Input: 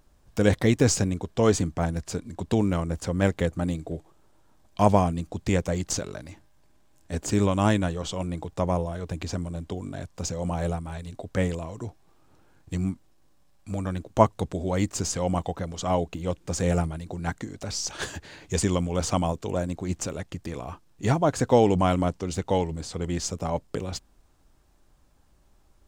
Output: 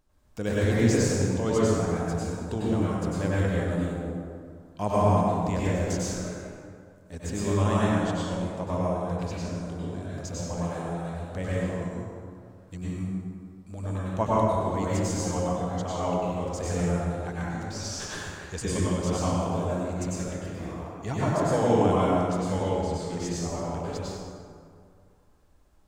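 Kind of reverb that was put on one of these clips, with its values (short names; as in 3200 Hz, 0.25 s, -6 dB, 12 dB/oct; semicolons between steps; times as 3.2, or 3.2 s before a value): plate-style reverb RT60 2.2 s, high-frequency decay 0.5×, pre-delay 85 ms, DRR -8.5 dB; gain -10 dB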